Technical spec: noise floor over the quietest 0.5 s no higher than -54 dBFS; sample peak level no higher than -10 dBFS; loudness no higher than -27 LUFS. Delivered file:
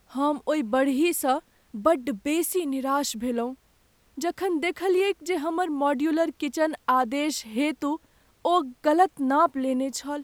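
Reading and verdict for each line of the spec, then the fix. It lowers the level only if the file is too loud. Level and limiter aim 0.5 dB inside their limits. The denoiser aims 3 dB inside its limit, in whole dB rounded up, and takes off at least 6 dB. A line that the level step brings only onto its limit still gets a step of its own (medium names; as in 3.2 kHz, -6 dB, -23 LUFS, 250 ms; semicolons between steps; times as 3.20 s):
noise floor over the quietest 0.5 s -63 dBFS: pass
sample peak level -8.0 dBFS: fail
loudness -25.5 LUFS: fail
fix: trim -2 dB; peak limiter -10.5 dBFS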